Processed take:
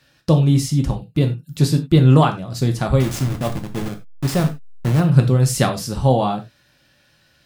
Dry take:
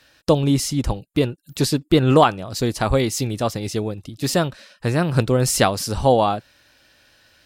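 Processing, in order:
0:03.00–0:05.00: hold until the input has moved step −20 dBFS
parametric band 140 Hz +13.5 dB 1 octave
reverb whose tail is shaped and stops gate 120 ms falling, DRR 4 dB
level −4.5 dB

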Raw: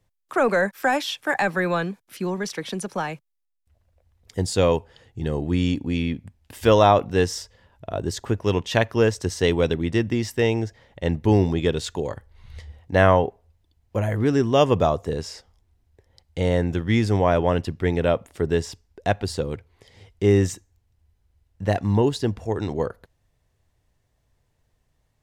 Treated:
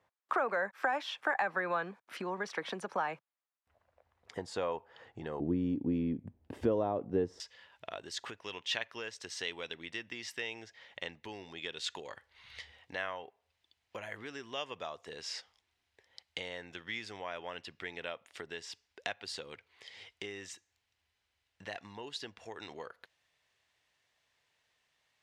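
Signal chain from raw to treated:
downward compressor 5 to 1, threshold −33 dBFS, peak gain reduction 19.5 dB
resonant band-pass 1,100 Hz, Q 1, from 0:05.40 330 Hz, from 0:07.40 2,800 Hz
level +6 dB

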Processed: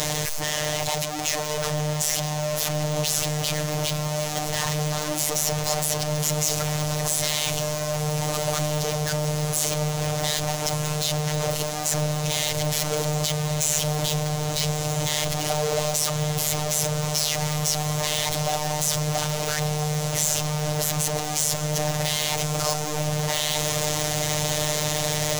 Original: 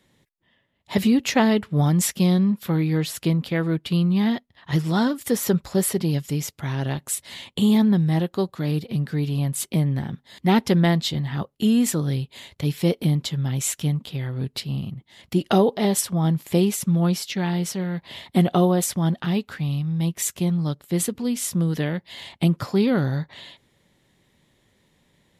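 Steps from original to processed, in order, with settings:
sign of each sample alone
on a send: feedback delay with all-pass diffusion 1,243 ms, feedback 75%, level −10 dB
on the sum: phases set to zero 151 Hz
graphic EQ with 15 bands 100 Hz +7 dB, 250 Hz −11 dB, 630 Hz +10 dB, 1,600 Hz −3 dB, 6,300 Hz +9 dB
level −3 dB

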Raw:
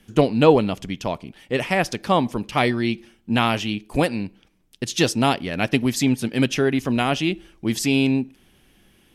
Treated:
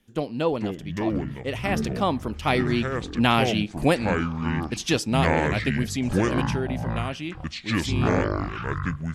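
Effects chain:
source passing by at 0:03.60, 15 m/s, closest 16 metres
delay with pitch and tempo change per echo 372 ms, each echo −7 semitones, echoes 3

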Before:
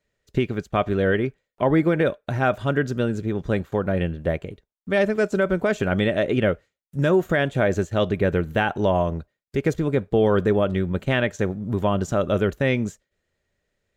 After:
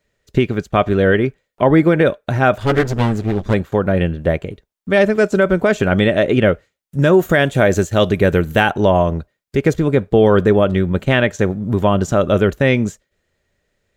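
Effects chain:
0:02.60–0:03.54: lower of the sound and its delayed copy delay 9.5 ms
0:07.18–0:08.70: high-shelf EQ 7,600 Hz → 4,800 Hz +11 dB
level +7 dB

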